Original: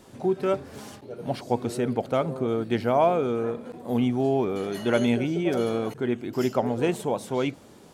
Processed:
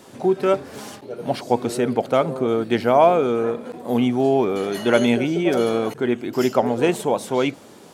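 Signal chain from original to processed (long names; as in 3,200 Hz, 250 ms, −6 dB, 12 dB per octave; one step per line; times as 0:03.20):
high-pass filter 220 Hz 6 dB per octave
level +7 dB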